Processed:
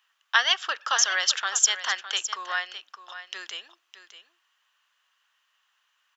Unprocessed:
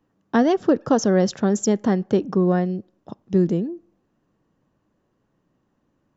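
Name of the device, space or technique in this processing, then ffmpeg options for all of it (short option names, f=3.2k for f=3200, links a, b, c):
headphones lying on a table: -af "highpass=f=1.3k:w=0.5412,highpass=f=1.3k:w=1.3066,equalizer=f=3.1k:t=o:w=0.52:g=10,aecho=1:1:610:0.237,volume=9dB"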